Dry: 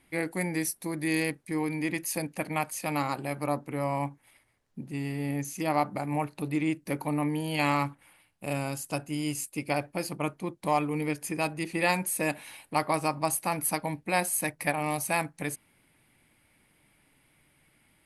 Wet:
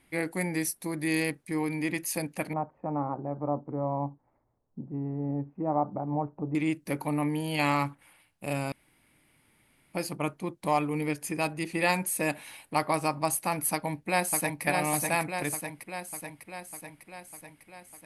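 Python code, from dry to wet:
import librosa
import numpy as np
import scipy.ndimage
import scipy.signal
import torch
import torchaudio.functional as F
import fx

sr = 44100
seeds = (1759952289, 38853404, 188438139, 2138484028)

y = fx.lowpass(x, sr, hz=1000.0, slope=24, at=(2.53, 6.55))
y = fx.echo_throw(y, sr, start_s=13.72, length_s=0.91, ms=600, feedback_pct=65, wet_db=-3.5)
y = fx.edit(y, sr, fx.room_tone_fill(start_s=8.72, length_s=1.21), tone=tone)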